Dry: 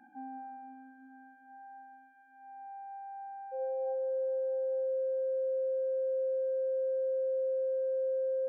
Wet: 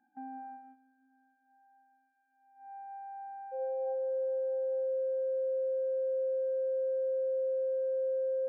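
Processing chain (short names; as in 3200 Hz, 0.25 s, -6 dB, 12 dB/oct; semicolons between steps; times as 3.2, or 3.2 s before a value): gate -47 dBFS, range -15 dB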